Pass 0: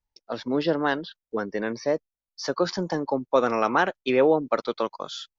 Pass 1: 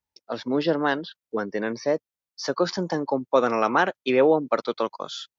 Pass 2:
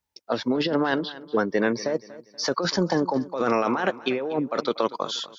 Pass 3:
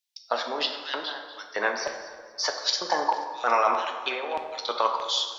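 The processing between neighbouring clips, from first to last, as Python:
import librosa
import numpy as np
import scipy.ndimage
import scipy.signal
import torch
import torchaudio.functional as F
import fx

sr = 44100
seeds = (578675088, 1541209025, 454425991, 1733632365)

y1 = scipy.signal.sosfilt(scipy.signal.butter(2, 91.0, 'highpass', fs=sr, output='sos'), x)
y1 = F.gain(torch.from_numpy(y1), 1.0).numpy()
y2 = fx.over_compress(y1, sr, threshold_db=-25.0, ratio=-1.0)
y2 = fx.echo_feedback(y2, sr, ms=239, feedback_pct=37, wet_db=-17.5)
y2 = F.gain(torch.from_numpy(y2), 2.0).numpy()
y3 = fx.filter_lfo_highpass(y2, sr, shape='square', hz=1.6, low_hz=810.0, high_hz=3400.0, q=1.6)
y3 = fx.rev_plate(y3, sr, seeds[0], rt60_s=1.6, hf_ratio=0.6, predelay_ms=0, drr_db=3.5)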